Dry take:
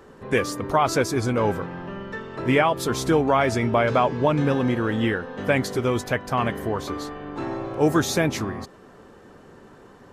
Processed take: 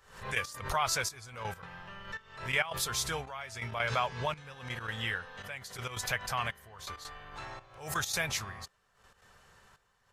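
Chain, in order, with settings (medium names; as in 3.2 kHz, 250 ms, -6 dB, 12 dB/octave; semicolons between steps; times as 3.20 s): amplifier tone stack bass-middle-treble 10-0-10; trance gate "....x.xxxxxx" 166 bpm -12 dB; swell ahead of each attack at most 100 dB/s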